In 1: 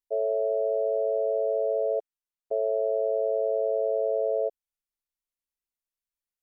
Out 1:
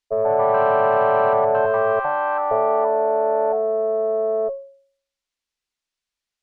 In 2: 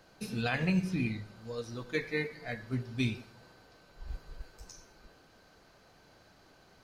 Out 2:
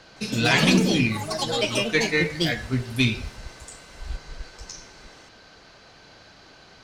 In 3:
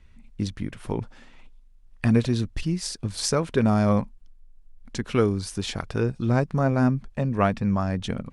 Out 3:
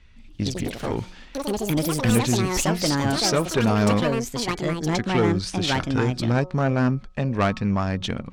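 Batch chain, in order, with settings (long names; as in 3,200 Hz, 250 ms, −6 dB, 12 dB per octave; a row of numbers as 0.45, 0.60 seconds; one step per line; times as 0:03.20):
low-pass filter 4,900 Hz 12 dB per octave
high-shelf EQ 2,200 Hz +10 dB
hum removal 183.2 Hz, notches 7
tube saturation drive 15 dB, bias 0.4
delay with pitch and tempo change per echo 164 ms, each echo +5 semitones, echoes 3
normalise the peak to −6 dBFS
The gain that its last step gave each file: +7.5, +10.0, +2.0 decibels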